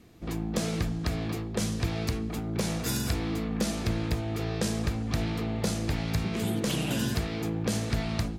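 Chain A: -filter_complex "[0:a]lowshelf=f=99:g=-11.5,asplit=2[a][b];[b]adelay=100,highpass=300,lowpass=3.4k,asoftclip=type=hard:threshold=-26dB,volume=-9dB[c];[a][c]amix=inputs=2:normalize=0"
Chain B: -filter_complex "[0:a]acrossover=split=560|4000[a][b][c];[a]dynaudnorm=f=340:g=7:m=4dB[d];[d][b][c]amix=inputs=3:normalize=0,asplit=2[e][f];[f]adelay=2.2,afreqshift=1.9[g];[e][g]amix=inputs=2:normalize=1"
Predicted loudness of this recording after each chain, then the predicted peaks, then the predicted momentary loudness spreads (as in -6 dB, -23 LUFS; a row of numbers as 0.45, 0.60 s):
-32.5, -30.5 LUFS; -16.5, -15.0 dBFS; 4, 4 LU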